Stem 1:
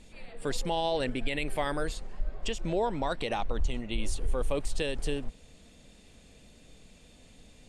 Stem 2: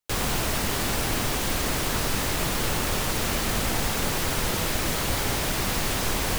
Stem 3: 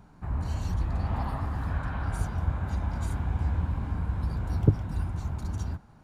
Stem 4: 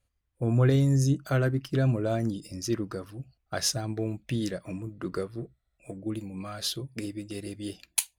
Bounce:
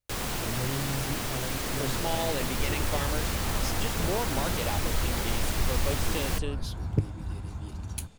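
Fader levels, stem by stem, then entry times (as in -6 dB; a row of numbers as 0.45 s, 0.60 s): -2.5 dB, -6.0 dB, -5.0 dB, -12.0 dB; 1.35 s, 0.00 s, 2.30 s, 0.00 s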